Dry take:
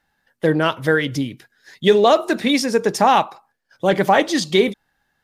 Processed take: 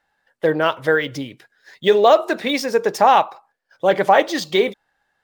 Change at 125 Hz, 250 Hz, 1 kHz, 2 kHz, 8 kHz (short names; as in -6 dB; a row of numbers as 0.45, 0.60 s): -7.5, -5.5, +1.5, 0.0, -5.0 dB